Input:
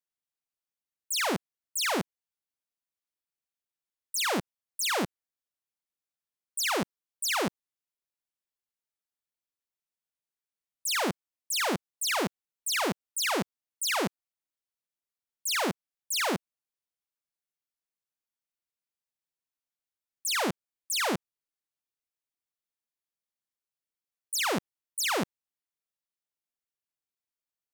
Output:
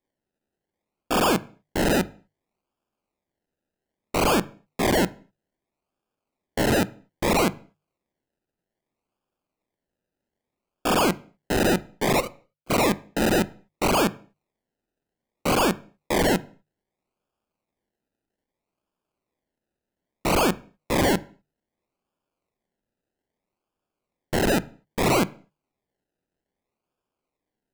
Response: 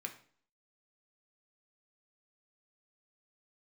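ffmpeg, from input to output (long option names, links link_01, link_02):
-filter_complex "[0:a]asettb=1/sr,asplit=3[link_01][link_02][link_03];[link_01]atrim=end=12.204[link_04];[link_02]atrim=start=12.2:end=12.7,asetpts=PTS-STARTPTS,afade=type=in:duration=0.004:curve=qsin,afade=type=out:start_time=0.496:duration=0.004:curve=qsin,asplit=3[link_05][link_06][link_07];[link_05]bandpass=frequency=530:width_type=q:width=8,volume=0dB[link_08];[link_06]bandpass=frequency=1840:width_type=q:width=8,volume=-6dB[link_09];[link_07]bandpass=frequency=2480:width_type=q:width=8,volume=-9dB[link_10];[link_08][link_09][link_10]amix=inputs=3:normalize=0[link_11];[link_03]atrim=start=12.696[link_12];[link_04][link_11]acrossfade=duration=0.004:curve1=hsin:curve2=qsin[link_13];[link_13][link_12]acrossfade=duration=0.004:curve1=qsin:curve2=hsin,acrusher=samples=31:mix=1:aa=0.000001:lfo=1:lforange=18.6:lforate=0.62,bandreject=frequency=50:width_type=h:width=6,bandreject=frequency=100:width_type=h:width=6,bandreject=frequency=150:width_type=h:width=6,asplit=2[link_14][link_15];[1:a]atrim=start_sample=2205,afade=type=out:start_time=0.31:duration=0.01,atrim=end_sample=14112[link_16];[link_15][link_16]afir=irnorm=-1:irlink=0,volume=-6.5dB[link_17];[link_14][link_17]amix=inputs=2:normalize=0,volume=6.5dB"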